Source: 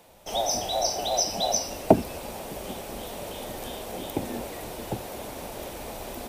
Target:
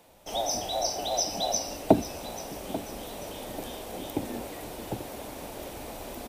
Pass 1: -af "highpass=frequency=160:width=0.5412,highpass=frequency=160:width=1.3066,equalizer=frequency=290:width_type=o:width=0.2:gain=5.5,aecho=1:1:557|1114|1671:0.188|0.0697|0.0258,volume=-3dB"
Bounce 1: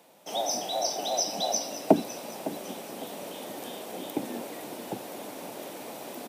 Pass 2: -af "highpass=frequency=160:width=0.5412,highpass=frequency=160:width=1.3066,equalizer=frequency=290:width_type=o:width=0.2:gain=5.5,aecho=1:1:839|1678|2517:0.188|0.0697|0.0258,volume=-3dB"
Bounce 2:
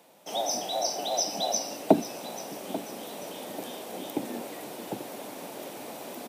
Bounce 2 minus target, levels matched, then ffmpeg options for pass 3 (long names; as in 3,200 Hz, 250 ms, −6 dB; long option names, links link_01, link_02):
125 Hz band −5.0 dB
-af "equalizer=frequency=290:width_type=o:width=0.2:gain=5.5,aecho=1:1:839|1678|2517:0.188|0.0697|0.0258,volume=-3dB"